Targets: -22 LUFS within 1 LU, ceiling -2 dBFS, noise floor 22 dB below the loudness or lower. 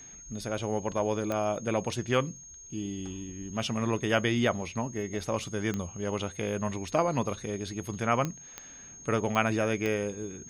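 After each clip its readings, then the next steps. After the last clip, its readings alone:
clicks found 6; steady tone 6.5 kHz; tone level -46 dBFS; loudness -31.0 LUFS; peak level -9.0 dBFS; loudness target -22.0 LUFS
-> de-click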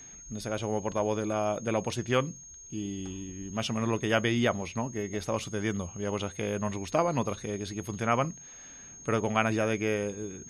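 clicks found 0; steady tone 6.5 kHz; tone level -46 dBFS
-> band-stop 6.5 kHz, Q 30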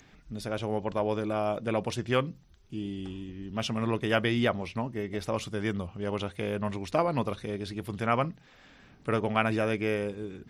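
steady tone not found; loudness -31.0 LUFS; peak level -8.5 dBFS; loudness target -22.0 LUFS
-> trim +9 dB; peak limiter -2 dBFS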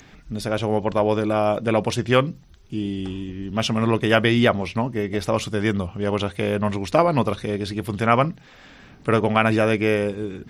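loudness -22.0 LUFS; peak level -2.0 dBFS; noise floor -49 dBFS

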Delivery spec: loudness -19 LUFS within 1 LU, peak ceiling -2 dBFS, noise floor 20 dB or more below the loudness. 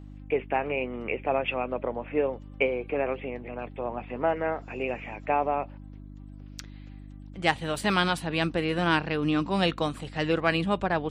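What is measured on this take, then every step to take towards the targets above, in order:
hum 50 Hz; highest harmonic 300 Hz; hum level -41 dBFS; loudness -28.5 LUFS; peak level -8.5 dBFS; loudness target -19.0 LUFS
-> de-hum 50 Hz, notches 6; trim +9.5 dB; peak limiter -2 dBFS

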